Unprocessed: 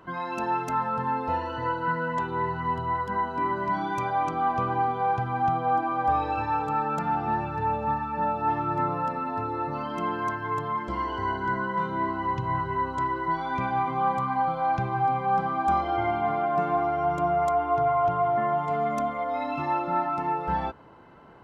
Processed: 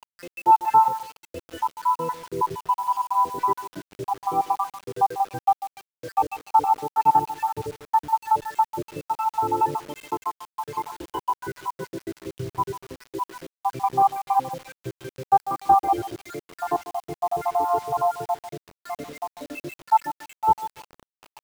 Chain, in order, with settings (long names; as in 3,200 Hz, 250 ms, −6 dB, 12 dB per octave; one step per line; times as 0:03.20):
time-frequency cells dropped at random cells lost 80%
loudspeaker in its box 140–2,800 Hz, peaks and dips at 220 Hz −9 dB, 530 Hz −6 dB, 880 Hz +6 dB, 1,400 Hz −9 dB, 2,000 Hz −8 dB
comb filter 2.3 ms, depth 48%
feedback echo with a high-pass in the loop 145 ms, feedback 18%, high-pass 180 Hz, level −13.5 dB
bit reduction 8 bits
level +5.5 dB